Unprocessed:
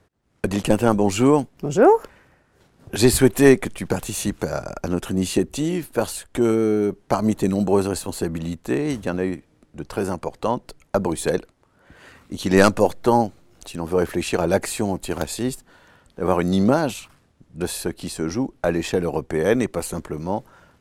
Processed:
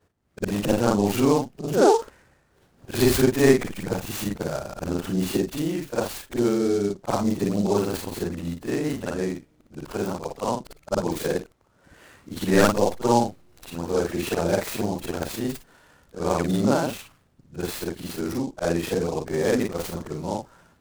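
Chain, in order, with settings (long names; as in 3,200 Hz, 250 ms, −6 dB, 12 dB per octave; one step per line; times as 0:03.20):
every overlapping window played backwards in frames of 118 ms
short delay modulated by noise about 5,300 Hz, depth 0.032 ms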